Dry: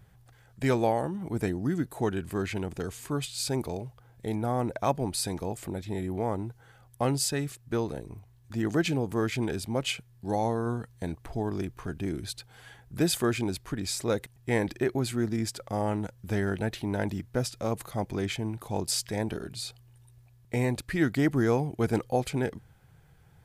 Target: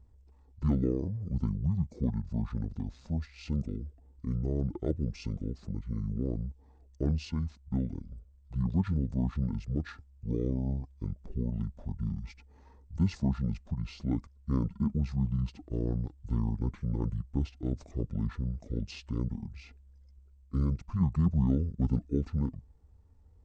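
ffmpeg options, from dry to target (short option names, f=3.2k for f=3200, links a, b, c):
-af "tiltshelf=f=970:g=8.5,asetrate=24750,aresample=44100,atempo=1.7818,volume=-8dB"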